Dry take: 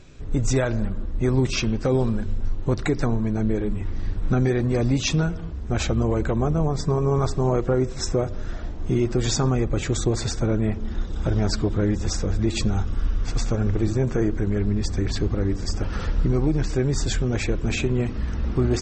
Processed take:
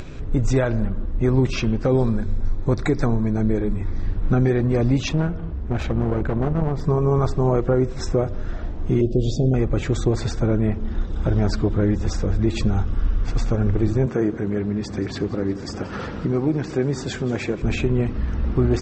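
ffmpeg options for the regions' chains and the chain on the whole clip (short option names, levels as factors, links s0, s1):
-filter_complex "[0:a]asettb=1/sr,asplit=3[s0][s1][s2];[s0]atrim=end=1.974[s3];[s1]atrim=start=1.97:end=4.03,asetpts=PTS-STARTPTS,afade=t=in:d=0.004:c=qsin,afade=t=out:st=2.056:d=0.004:c=qsin,asuperstop=centerf=2900:order=4:qfactor=4.8,highshelf=f=4800:g=7[s4];[s2]atrim=start=4.026[s5];[s3][s4]acrossfade=d=0.004:c1=hsin:c2=qsin[s6];[s6][s5]acrossfade=d=0.004:c1=qsin:c2=hsin,asettb=1/sr,asplit=3[s7][s8][s9];[s7]atrim=end=5.094[s10];[s8]atrim=start=5.09:end=6.84,asetpts=PTS-STARTPTS,afade=t=in:d=0.004:c=qsin,afade=t=out:st=1.746:d=0.004:c=qsin,lowpass=f=2900:p=1,aeval=exprs='clip(val(0),-1,0.0501)':c=same[s11];[s9]atrim=start=6.836[s12];[s10][s11]acrossfade=d=0.004:c1=hsin:c2=qsin[s13];[s13][s12]acrossfade=d=0.004:c1=qsin:c2=hsin,asettb=1/sr,asplit=3[s14][s15][s16];[s14]atrim=end=9.014[s17];[s15]atrim=start=9.01:end=9.54,asetpts=PTS-STARTPTS,afade=t=in:d=0.004:c=qsin,afade=t=out:st=0.526:d=0.004:c=qsin,asuperstop=centerf=1400:order=12:qfactor=0.62,aemphasis=mode=reproduction:type=50fm[s18];[s16]atrim=start=9.536[s19];[s17][s18]acrossfade=d=0.004:c1=hsin:c2=qsin[s20];[s20][s19]acrossfade=d=0.004:c1=qsin:c2=hsin,asettb=1/sr,asplit=3[s21][s22][s23];[s21]atrim=end=14.064[s24];[s22]atrim=start=14.06:end=17.62,asetpts=PTS-STARTPTS,afade=t=in:d=0.004:c=qsin,afade=t=out:st=3.556:d=0.004:c=qsin,highpass=150,aecho=1:1:179|358|537|716|895:0.141|0.0777|0.0427|0.0235|0.0129,atrim=end_sample=156996[s25];[s23]atrim=start=17.616[s26];[s24][s25]acrossfade=d=0.004:c1=hsin:c2=qsin[s27];[s27][s26]acrossfade=d=0.004:c1=qsin:c2=hsin,lowpass=f=2300:p=1,acompressor=mode=upward:threshold=0.0501:ratio=2.5,volume=1.33"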